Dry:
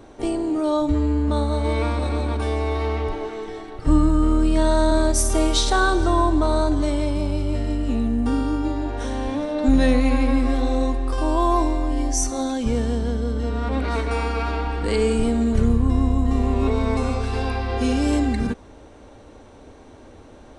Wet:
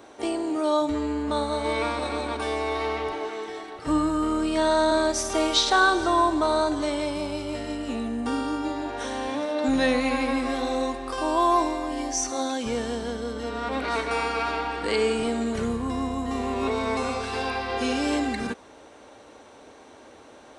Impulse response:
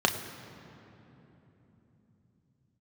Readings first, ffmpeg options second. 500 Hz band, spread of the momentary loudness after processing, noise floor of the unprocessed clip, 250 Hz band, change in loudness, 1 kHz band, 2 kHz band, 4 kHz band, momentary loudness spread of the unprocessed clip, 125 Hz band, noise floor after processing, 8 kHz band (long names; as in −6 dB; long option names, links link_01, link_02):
−1.5 dB, 9 LU, −45 dBFS, −5.5 dB, −4.0 dB, +1.0 dB, +2.0 dB, +1.5 dB, 6 LU, −16.0 dB, −49 dBFS, −3.0 dB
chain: -filter_complex "[0:a]highpass=frequency=650:poles=1,acrossover=split=6200[link_01][link_02];[link_02]acompressor=threshold=-47dB:ratio=4:attack=1:release=60[link_03];[link_01][link_03]amix=inputs=2:normalize=0,volume=2.5dB"